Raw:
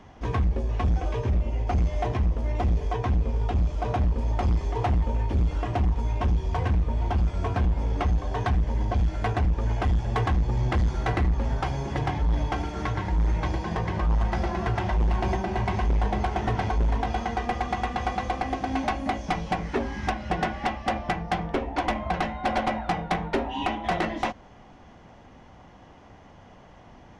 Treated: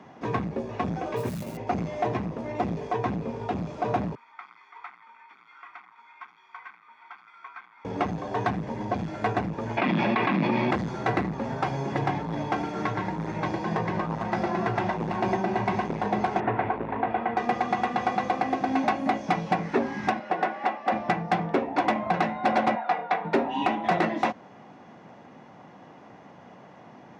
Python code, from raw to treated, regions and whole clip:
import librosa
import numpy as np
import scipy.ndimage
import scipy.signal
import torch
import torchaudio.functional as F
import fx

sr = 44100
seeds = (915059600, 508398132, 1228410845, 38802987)

y = fx.chain(x, sr, fx.mod_noise(seeds[0], snr_db=18),
    fx.transformer_sat(knee_hz=120.0), at=(1.16, 1.57))
y = fx.chain(y, sr, fx.ladder_bandpass(hz=1800.0, resonance_pct=55),
    fx.comb(ms=0.9, depth=0.77), at=(4.15, 7.85))
y = fx.chain(y, sr, fx.cabinet(low_hz=190.0, low_slope=24, high_hz=4200.0, hz=(450.0, 780.0, 1500.0, 2400.0), db=(-10, -6, -3, 9)),
    fx.env_flatten(amount_pct=100), at=(9.77, 10.71))
y = fx.chain(y, sr, fx.lowpass(hz=2700.0, slope=24),
    fx.peak_eq(hz=180.0, db=-10.0, octaves=0.44),
    fx.doppler_dist(depth_ms=0.24), at=(16.4, 17.37))
y = fx.chain(y, sr, fx.highpass(hz=380.0, slope=12),
    fx.high_shelf(hz=3400.0, db=-10.0), at=(20.19, 20.92))
y = fx.chain(y, sr, fx.highpass(hz=510.0, slope=12),
    fx.air_absorb(metres=160.0),
    fx.comb(ms=4.2, depth=0.44), at=(22.75, 23.25))
y = scipy.signal.sosfilt(scipy.signal.butter(4, 140.0, 'highpass', fs=sr, output='sos'), y)
y = fx.high_shelf(y, sr, hz=4600.0, db=-9.0)
y = fx.notch(y, sr, hz=3100.0, q=11.0)
y = F.gain(torch.from_numpy(y), 3.0).numpy()